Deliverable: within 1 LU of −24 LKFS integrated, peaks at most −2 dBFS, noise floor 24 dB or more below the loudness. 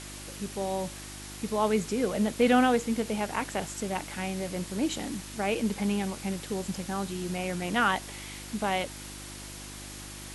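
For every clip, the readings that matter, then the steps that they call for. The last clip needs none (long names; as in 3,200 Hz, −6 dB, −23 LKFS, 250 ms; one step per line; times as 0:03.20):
mains hum 50 Hz; hum harmonics up to 350 Hz; level of the hum −44 dBFS; background noise floor −43 dBFS; target noise floor −54 dBFS; integrated loudness −30.0 LKFS; sample peak −11.5 dBFS; target loudness −24.0 LKFS
→ hum removal 50 Hz, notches 7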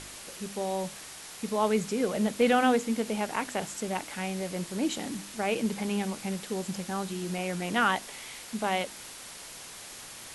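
mains hum none found; background noise floor −45 dBFS; target noise floor −55 dBFS
→ broadband denoise 10 dB, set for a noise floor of −45 dBFS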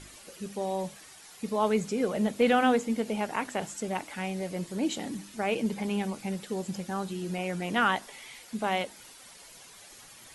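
background noise floor −51 dBFS; target noise floor −55 dBFS
→ broadband denoise 6 dB, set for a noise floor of −51 dBFS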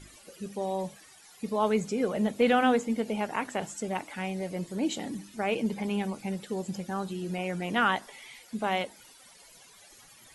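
background noise floor −55 dBFS; integrated loudness −30.5 LKFS; sample peak −11.0 dBFS; target loudness −24.0 LKFS
→ level +6.5 dB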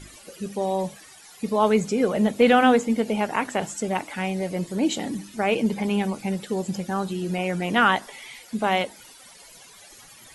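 integrated loudness −24.0 LKFS; sample peak −4.5 dBFS; background noise floor −48 dBFS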